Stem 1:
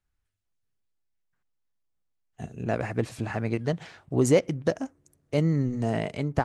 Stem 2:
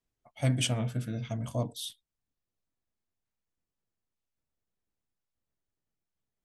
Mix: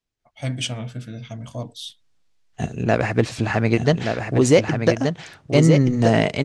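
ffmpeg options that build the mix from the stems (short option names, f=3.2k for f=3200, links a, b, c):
-filter_complex "[0:a]dynaudnorm=f=190:g=3:m=14dB,adelay=200,volume=-2dB,asplit=2[a][b];[b]volume=-5.5dB[c];[1:a]volume=0.5dB[d];[c]aecho=0:1:1176:1[e];[a][d][e]amix=inputs=3:normalize=0,lowpass=5.3k,highshelf=f=3.2k:g=9.5"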